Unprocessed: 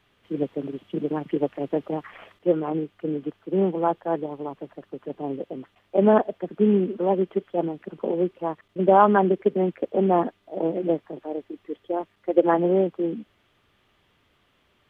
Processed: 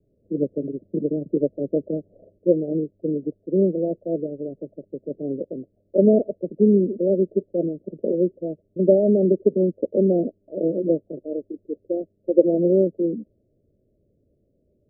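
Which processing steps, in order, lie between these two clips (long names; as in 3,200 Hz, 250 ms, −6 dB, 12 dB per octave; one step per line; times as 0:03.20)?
Butterworth low-pass 620 Hz 96 dB per octave
level +3 dB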